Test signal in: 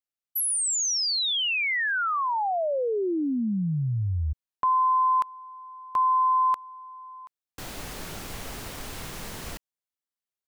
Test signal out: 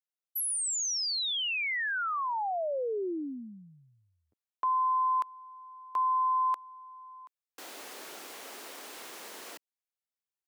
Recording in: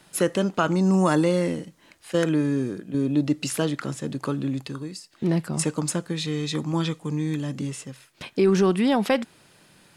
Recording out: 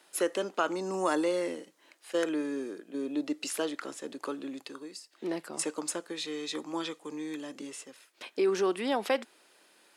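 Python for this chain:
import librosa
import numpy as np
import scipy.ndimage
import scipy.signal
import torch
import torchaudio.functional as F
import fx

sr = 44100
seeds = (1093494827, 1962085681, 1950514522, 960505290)

y = scipy.signal.sosfilt(scipy.signal.butter(4, 310.0, 'highpass', fs=sr, output='sos'), x)
y = y * librosa.db_to_amplitude(-5.5)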